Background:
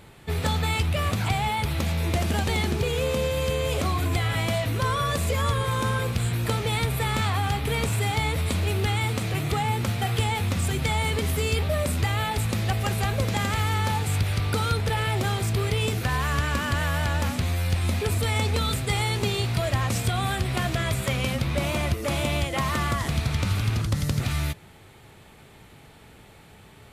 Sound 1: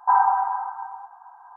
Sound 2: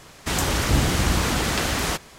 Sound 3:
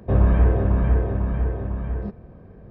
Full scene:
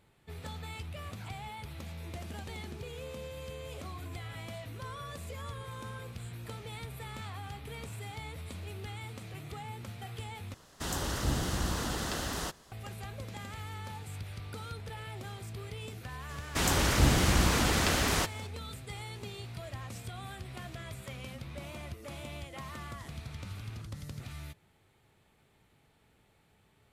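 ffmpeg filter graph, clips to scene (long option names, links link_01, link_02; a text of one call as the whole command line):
ffmpeg -i bed.wav -i cue0.wav -i cue1.wav -filter_complex "[2:a]asplit=2[link_01][link_02];[0:a]volume=-17.5dB[link_03];[link_01]equalizer=frequency=2300:width_type=o:width=0.29:gain=-10[link_04];[link_03]asplit=2[link_05][link_06];[link_05]atrim=end=10.544[link_07];[link_04]atrim=end=2.18,asetpts=PTS-STARTPTS,volume=-11dB[link_08];[link_06]atrim=start=12.716[link_09];[link_02]atrim=end=2.18,asetpts=PTS-STARTPTS,volume=-4.5dB,afade=type=in:duration=0.004:curve=hsin,afade=type=out:start_time=2.176:duration=0.004:curve=hsin,adelay=16290[link_10];[link_07][link_08]acrossfade=duration=0.004:curve1=hsin:curve2=hsin[link_11];[link_11][link_09]acrossfade=duration=0.004:curve1=hsin:curve2=hsin[link_12];[link_12][link_10]amix=inputs=2:normalize=0" out.wav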